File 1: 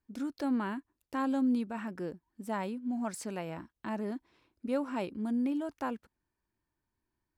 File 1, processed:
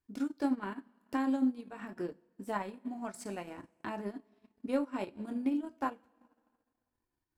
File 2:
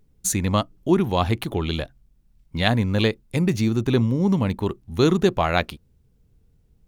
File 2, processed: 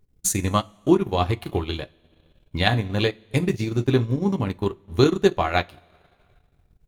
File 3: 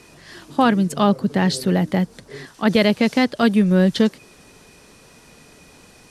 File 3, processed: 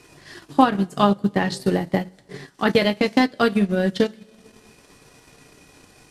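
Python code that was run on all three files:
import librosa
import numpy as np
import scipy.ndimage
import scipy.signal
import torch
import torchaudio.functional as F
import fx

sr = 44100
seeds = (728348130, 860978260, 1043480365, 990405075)

y = fx.rev_double_slope(x, sr, seeds[0], early_s=0.22, late_s=1.6, knee_db=-18, drr_db=3.5)
y = fx.transient(y, sr, attack_db=6, sustain_db=-11)
y = F.gain(torch.from_numpy(y), -4.0).numpy()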